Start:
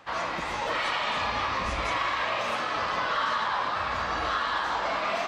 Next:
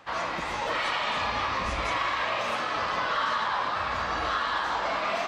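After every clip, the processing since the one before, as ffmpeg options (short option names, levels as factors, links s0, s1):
-af anull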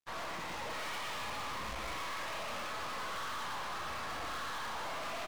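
-filter_complex "[0:a]asplit=2[s0][s1];[s1]aecho=0:1:116:0.631[s2];[s0][s2]amix=inputs=2:normalize=0,aeval=exprs='sgn(val(0))*max(abs(val(0))-0.00596,0)':c=same,aeval=exprs='(tanh(70.8*val(0)+0.7)-tanh(0.7))/70.8':c=same,volume=0.841"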